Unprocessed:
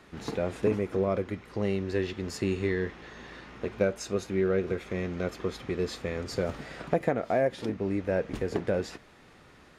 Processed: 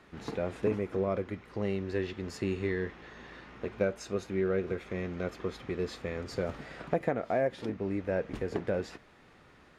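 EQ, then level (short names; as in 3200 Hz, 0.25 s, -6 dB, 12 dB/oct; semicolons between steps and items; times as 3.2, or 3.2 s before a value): tilt shelf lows -3.5 dB, about 1500 Hz; high shelf 2900 Hz -12 dB; 0.0 dB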